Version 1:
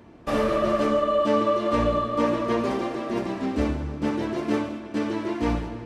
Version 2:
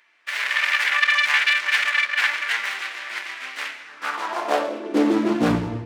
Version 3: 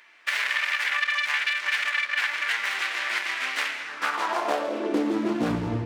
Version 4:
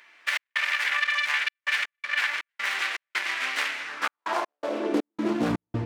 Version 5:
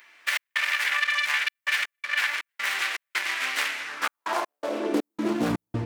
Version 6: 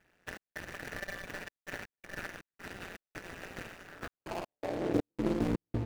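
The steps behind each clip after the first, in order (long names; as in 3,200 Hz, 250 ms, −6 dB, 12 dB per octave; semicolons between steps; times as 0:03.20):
phase distortion by the signal itself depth 0.91 ms; automatic gain control gain up to 6 dB; high-pass filter sweep 2,000 Hz → 91 Hz, 0:03.82–0:05.82; level −1.5 dB
downward compressor 6 to 1, threshold −29 dBFS, peak gain reduction 14.5 dB; level +6 dB
gate pattern "xx.xxxxx.x.xx." 81 BPM −60 dB
high-shelf EQ 8,600 Hz +11 dB
running median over 41 samples; amplitude modulation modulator 180 Hz, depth 75%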